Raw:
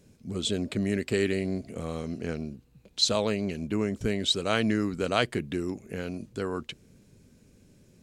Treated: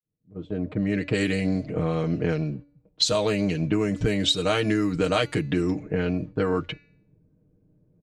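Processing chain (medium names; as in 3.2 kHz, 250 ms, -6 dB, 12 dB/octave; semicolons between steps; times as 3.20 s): fade-in on the opening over 1.66 s; level-controlled noise filter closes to 630 Hz, open at -23 dBFS; gate -46 dBFS, range -15 dB; peaking EQ 88 Hz +10.5 dB 0.26 oct; comb 6.5 ms, depth 85%; compression 6:1, threshold -28 dBFS, peak gain reduction 11 dB; de-hum 287.3 Hz, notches 24; trim +8.5 dB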